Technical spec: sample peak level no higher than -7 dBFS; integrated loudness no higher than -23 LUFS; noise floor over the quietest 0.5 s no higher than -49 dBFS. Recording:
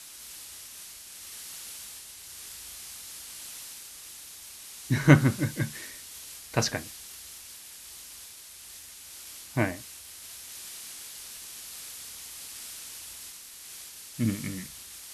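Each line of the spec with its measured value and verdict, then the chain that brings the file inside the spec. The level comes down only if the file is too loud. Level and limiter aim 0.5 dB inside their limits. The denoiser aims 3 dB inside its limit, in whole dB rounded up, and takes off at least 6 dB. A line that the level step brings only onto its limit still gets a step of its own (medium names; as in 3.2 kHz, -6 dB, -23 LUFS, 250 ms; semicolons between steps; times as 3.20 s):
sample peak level -4.5 dBFS: fail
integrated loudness -33.0 LUFS: pass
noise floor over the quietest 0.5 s -47 dBFS: fail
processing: noise reduction 6 dB, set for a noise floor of -47 dBFS; peak limiter -7.5 dBFS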